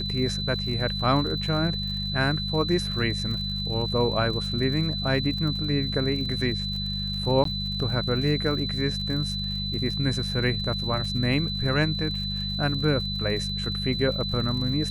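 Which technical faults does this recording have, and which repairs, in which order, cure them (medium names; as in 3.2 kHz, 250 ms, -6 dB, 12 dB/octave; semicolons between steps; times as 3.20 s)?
crackle 60 per s -34 dBFS
hum 50 Hz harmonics 4 -32 dBFS
whine 4 kHz -30 dBFS
7.44–7.45 s: dropout 13 ms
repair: de-click; de-hum 50 Hz, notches 4; band-stop 4 kHz, Q 30; interpolate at 7.44 s, 13 ms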